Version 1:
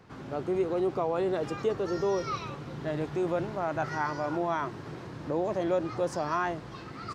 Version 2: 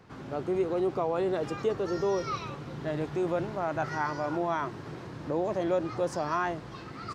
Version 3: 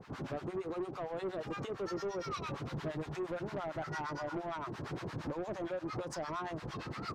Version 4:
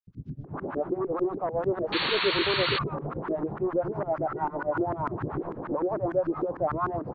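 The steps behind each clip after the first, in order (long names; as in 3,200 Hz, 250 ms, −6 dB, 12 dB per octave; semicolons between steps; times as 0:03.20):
no processing that can be heard
downward compressor 6 to 1, threshold −34 dBFS, peak gain reduction 11 dB; two-band tremolo in antiphase 8.7 Hz, depth 100%, crossover 850 Hz; soft clipping −39 dBFS, distortion −12 dB; level +6.5 dB
three-band delay without the direct sound highs, lows, mids 70/440 ms, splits 210/4,300 Hz; auto-filter low-pass saw up 6.7 Hz 290–1,500 Hz; sound drawn into the spectrogram noise, 0:01.92–0:02.79, 880–4,500 Hz −36 dBFS; level +7.5 dB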